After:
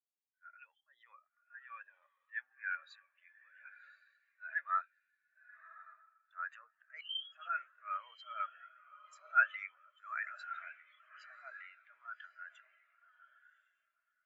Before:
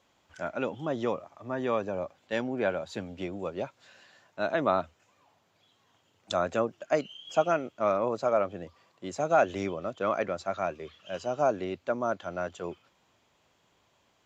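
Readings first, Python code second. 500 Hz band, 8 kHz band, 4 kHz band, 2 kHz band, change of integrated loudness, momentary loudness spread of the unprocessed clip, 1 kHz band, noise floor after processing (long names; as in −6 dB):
−38.0 dB, can't be measured, −3.5 dB, −0.5 dB, −9.0 dB, 12 LU, −9.5 dB, −84 dBFS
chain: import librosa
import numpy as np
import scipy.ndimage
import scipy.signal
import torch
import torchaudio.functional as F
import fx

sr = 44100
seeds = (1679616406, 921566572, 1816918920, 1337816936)

y = fx.transient(x, sr, attack_db=-12, sustain_db=9)
y = fx.highpass_res(y, sr, hz=1800.0, q=2.8)
y = fx.echo_diffused(y, sr, ms=1096, feedback_pct=46, wet_db=-4)
y = fx.spectral_expand(y, sr, expansion=2.5)
y = y * 10.0 ** (-2.0 / 20.0)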